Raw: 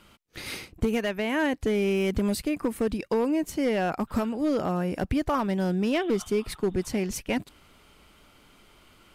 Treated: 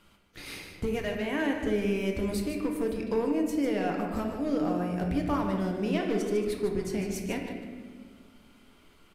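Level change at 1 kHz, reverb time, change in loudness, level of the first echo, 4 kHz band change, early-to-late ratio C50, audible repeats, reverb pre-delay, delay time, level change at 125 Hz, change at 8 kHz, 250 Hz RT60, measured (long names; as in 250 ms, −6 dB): −3.5 dB, 1.6 s, −2.5 dB, −9.0 dB, −4.5 dB, 3.5 dB, 1, 4 ms, 150 ms, −2.5 dB, −5.0 dB, 2.6 s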